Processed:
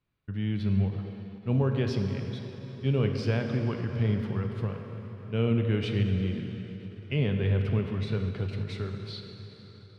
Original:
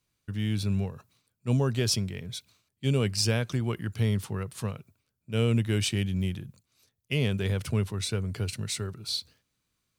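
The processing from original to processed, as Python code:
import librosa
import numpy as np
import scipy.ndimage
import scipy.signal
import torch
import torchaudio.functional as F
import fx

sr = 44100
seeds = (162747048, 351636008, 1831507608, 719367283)

y = fx.air_absorb(x, sr, metres=350.0)
y = fx.rev_plate(y, sr, seeds[0], rt60_s=4.5, hf_ratio=0.8, predelay_ms=0, drr_db=3.5)
y = fx.end_taper(y, sr, db_per_s=150.0)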